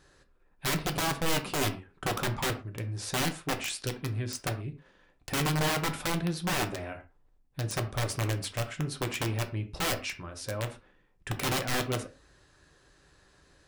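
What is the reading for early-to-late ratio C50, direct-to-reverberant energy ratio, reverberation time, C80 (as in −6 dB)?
13.5 dB, 5.5 dB, non-exponential decay, 18.0 dB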